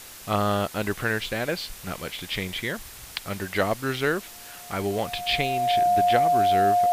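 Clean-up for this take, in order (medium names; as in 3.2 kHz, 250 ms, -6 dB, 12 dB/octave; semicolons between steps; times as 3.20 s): band-stop 710 Hz, Q 30; noise print and reduce 27 dB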